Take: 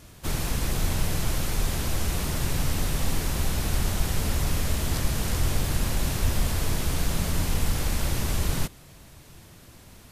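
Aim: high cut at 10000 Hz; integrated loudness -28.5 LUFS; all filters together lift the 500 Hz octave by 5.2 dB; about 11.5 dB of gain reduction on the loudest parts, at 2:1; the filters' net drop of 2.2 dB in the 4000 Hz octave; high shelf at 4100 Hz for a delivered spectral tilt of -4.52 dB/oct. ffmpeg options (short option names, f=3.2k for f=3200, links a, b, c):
-af "lowpass=10k,equalizer=f=500:t=o:g=6.5,equalizer=f=4k:t=o:g=-6,highshelf=f=4.1k:g=5,acompressor=threshold=-40dB:ratio=2,volume=9.5dB"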